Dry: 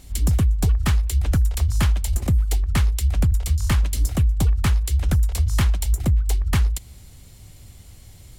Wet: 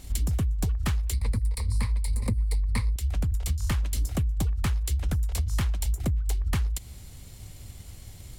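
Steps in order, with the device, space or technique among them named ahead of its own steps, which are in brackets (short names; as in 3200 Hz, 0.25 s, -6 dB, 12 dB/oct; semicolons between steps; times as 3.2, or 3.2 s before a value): 1.13–2.96 ripple EQ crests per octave 0.93, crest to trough 15 dB; drum-bus smash (transient shaper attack +4 dB, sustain 0 dB; compressor 6:1, threshold -22 dBFS, peak gain reduction 13.5 dB; soft clip -16.5 dBFS, distortion -24 dB)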